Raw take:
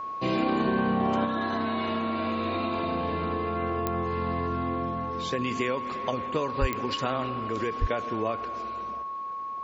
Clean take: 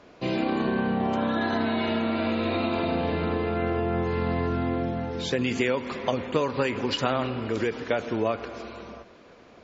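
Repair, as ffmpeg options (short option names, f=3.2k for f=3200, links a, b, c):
-filter_complex "[0:a]adeclick=t=4,bandreject=f=1.1k:w=30,asplit=3[a][b][c];[a]afade=t=out:st=6.6:d=0.02[d];[b]highpass=f=140:w=0.5412,highpass=f=140:w=1.3066,afade=t=in:st=6.6:d=0.02,afade=t=out:st=6.72:d=0.02[e];[c]afade=t=in:st=6.72:d=0.02[f];[d][e][f]amix=inputs=3:normalize=0,asplit=3[g][h][i];[g]afade=t=out:st=7.8:d=0.02[j];[h]highpass=f=140:w=0.5412,highpass=f=140:w=1.3066,afade=t=in:st=7.8:d=0.02,afade=t=out:st=7.92:d=0.02[k];[i]afade=t=in:st=7.92:d=0.02[l];[j][k][l]amix=inputs=3:normalize=0,asetnsamples=n=441:p=0,asendcmd='1.25 volume volume 4dB',volume=0dB"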